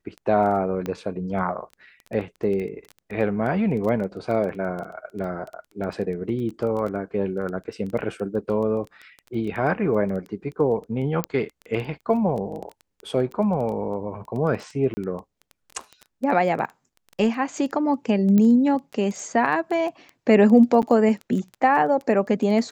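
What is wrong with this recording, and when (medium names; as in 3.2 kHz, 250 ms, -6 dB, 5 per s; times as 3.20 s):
crackle 10 per s -29 dBFS
0.86 s: pop -16 dBFS
11.24 s: pop -9 dBFS
14.94–14.97 s: dropout 30 ms
18.38 s: pop -11 dBFS
20.82–20.83 s: dropout 8.6 ms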